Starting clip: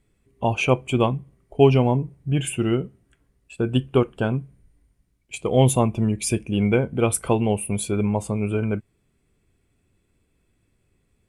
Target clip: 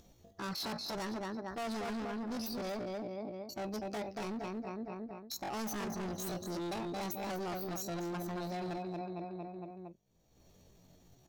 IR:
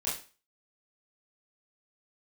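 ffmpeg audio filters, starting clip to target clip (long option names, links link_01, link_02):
-filter_complex "[0:a]agate=range=-33dB:threshold=-46dB:ratio=3:detection=peak,equalizer=frequency=3800:width=3.8:gain=14,asplit=2[link_01][link_02];[link_02]adelay=230,lowpass=frequency=2100:poles=1,volume=-6dB,asplit=2[link_03][link_04];[link_04]adelay=230,lowpass=frequency=2100:poles=1,volume=0.41,asplit=2[link_05][link_06];[link_06]adelay=230,lowpass=frequency=2100:poles=1,volume=0.41,asplit=2[link_07][link_08];[link_08]adelay=230,lowpass=frequency=2100:poles=1,volume=0.41,asplit=2[link_09][link_10];[link_10]adelay=230,lowpass=frequency=2100:poles=1,volume=0.41[link_11];[link_03][link_05][link_07][link_09][link_11]amix=inputs=5:normalize=0[link_12];[link_01][link_12]amix=inputs=2:normalize=0,acompressor=mode=upward:threshold=-36dB:ratio=2.5,asoftclip=type=hard:threshold=-25dB,areverse,acompressor=threshold=-40dB:ratio=8,areverse,asetrate=74167,aresample=44100,atempo=0.594604,volume=1.5dB"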